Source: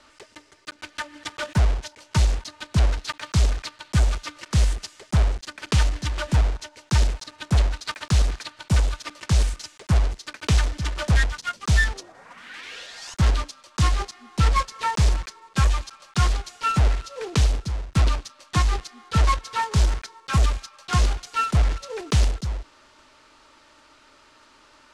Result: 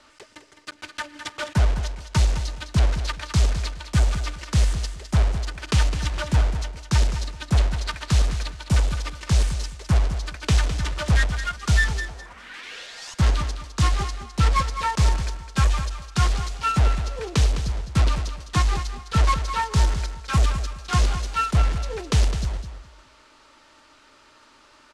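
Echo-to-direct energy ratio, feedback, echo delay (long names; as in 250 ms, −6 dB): −10.0 dB, 21%, 208 ms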